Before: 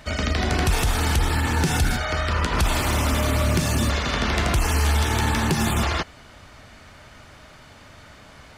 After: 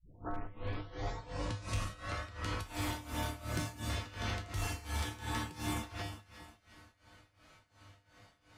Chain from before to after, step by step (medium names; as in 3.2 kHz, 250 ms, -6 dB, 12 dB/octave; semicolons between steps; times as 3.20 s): tape start-up on the opening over 2.28 s; feedback comb 100 Hz, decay 0.62 s, harmonics odd, mix 90%; echo whose repeats swap between lows and highs 180 ms, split 1.3 kHz, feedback 63%, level -9 dB; tremolo 2.8 Hz, depth 86%; one-sided clip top -31 dBFS, bottom -28 dBFS; trim +1 dB